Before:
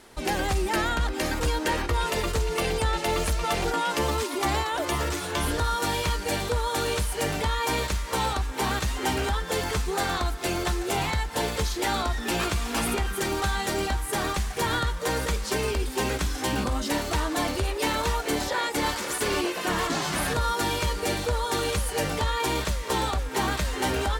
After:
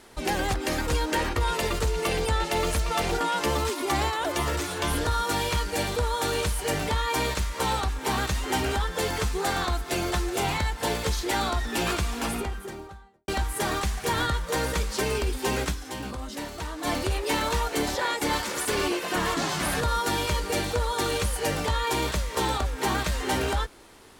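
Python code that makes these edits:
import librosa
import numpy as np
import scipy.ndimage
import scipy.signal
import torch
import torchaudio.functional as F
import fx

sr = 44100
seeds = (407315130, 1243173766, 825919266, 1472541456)

y = fx.studio_fade_out(x, sr, start_s=12.44, length_s=1.37)
y = fx.edit(y, sr, fx.cut(start_s=0.54, length_s=0.53),
    fx.fade_down_up(start_s=16.23, length_s=1.18, db=-8.0, fade_s=0.35, curve='exp'), tone=tone)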